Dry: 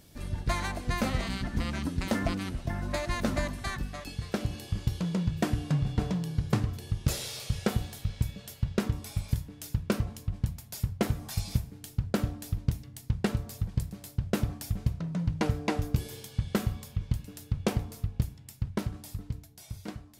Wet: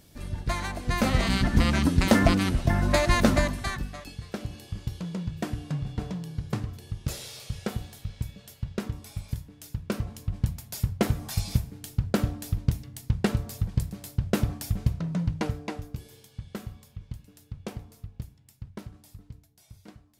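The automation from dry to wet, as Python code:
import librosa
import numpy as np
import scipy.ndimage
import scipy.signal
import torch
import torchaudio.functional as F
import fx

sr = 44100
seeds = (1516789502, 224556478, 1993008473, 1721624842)

y = fx.gain(x, sr, db=fx.line((0.73, 0.5), (1.37, 9.5), (3.19, 9.5), (4.22, -3.5), (9.77, -3.5), (10.43, 3.5), (15.17, 3.5), (15.91, -9.0)))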